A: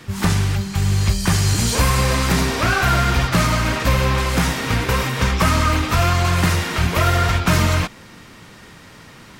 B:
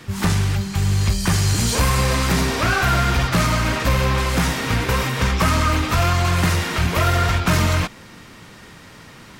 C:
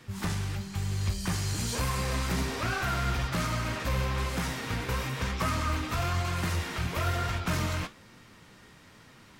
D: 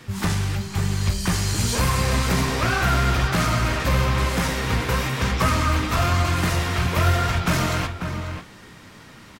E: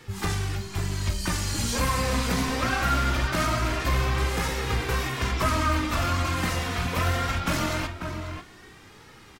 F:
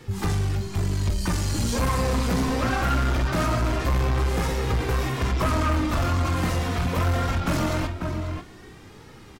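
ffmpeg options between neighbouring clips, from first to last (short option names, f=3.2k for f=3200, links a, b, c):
-af "acontrast=67,volume=-6.5dB"
-af "flanger=delay=7.8:depth=8.9:regen=69:speed=1.1:shape=sinusoidal,volume=-7.5dB"
-filter_complex "[0:a]asplit=2[a][b];[b]adelay=542.3,volume=-7dB,highshelf=f=4k:g=-12.2[c];[a][c]amix=inputs=2:normalize=0,volume=8.5dB"
-af "flanger=delay=2.3:depth=1.8:regen=29:speed=0.22:shape=triangular"
-filter_complex "[0:a]asplit=2[a][b];[b]adynamicsmooth=sensitivity=0.5:basefreq=970,volume=1dB[c];[a][c]amix=inputs=2:normalize=0,asoftclip=type=tanh:threshold=-17.5dB"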